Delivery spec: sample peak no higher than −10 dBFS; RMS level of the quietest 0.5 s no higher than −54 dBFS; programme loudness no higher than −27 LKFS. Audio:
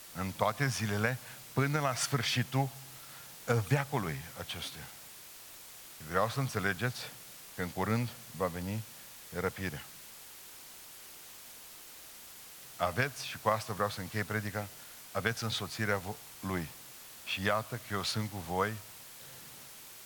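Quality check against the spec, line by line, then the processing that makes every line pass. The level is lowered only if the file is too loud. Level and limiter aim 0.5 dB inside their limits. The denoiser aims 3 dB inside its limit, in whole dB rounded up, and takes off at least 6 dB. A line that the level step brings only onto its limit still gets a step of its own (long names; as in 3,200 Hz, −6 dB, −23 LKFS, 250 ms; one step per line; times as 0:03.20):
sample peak −12.5 dBFS: in spec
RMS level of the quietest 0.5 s −51 dBFS: out of spec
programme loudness −34.5 LKFS: in spec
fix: broadband denoise 6 dB, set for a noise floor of −51 dBFS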